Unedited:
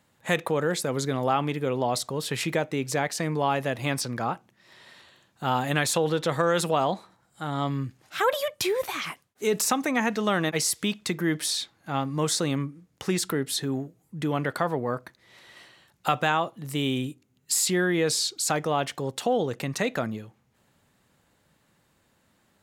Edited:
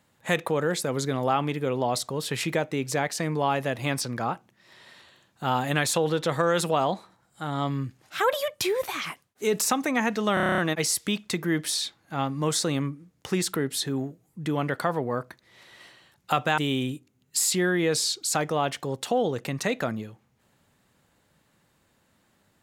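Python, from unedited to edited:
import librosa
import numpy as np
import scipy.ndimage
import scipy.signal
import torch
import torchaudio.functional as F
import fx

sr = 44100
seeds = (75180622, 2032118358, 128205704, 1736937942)

y = fx.edit(x, sr, fx.stutter(start_s=10.34, slice_s=0.03, count=9),
    fx.cut(start_s=16.34, length_s=0.39), tone=tone)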